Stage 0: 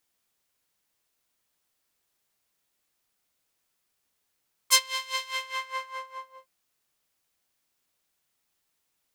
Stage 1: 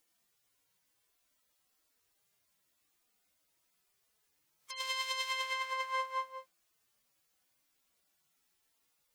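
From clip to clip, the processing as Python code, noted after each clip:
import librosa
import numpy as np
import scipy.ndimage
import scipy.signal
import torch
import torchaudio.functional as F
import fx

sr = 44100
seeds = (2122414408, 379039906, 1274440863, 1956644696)

y = fx.hpss_only(x, sr, part='harmonic')
y = fx.over_compress(y, sr, threshold_db=-36.0, ratio=-1.0)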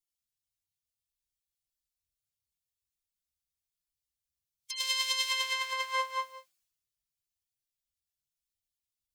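y = fx.band_widen(x, sr, depth_pct=100)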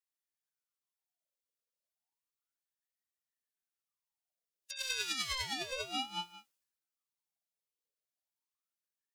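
y = fx.ring_lfo(x, sr, carrier_hz=1200.0, swing_pct=60, hz=0.32)
y = y * 10.0 ** (-3.0 / 20.0)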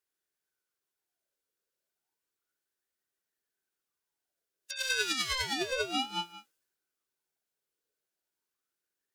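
y = fx.small_body(x, sr, hz=(380.0, 1500.0), ring_ms=20, db=10)
y = fx.wow_flutter(y, sr, seeds[0], rate_hz=2.1, depth_cents=17.0)
y = y * 10.0 ** (4.0 / 20.0)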